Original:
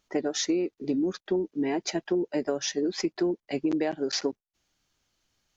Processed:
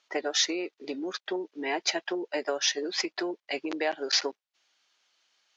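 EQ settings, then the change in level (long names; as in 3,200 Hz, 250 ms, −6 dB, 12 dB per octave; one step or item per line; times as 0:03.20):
high-pass filter 610 Hz 12 dB per octave
low-pass filter 3,900 Hz 12 dB per octave
high-shelf EQ 2,600 Hz +9.5 dB
+3.5 dB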